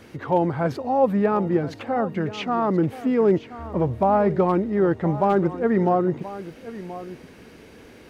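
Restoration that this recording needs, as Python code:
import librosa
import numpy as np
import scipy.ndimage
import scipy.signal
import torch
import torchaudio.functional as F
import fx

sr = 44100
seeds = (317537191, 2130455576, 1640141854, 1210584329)

y = fx.fix_declip(x, sr, threshold_db=-10.0)
y = fx.fix_declick_ar(y, sr, threshold=6.5)
y = fx.fix_echo_inverse(y, sr, delay_ms=1028, level_db=-15.0)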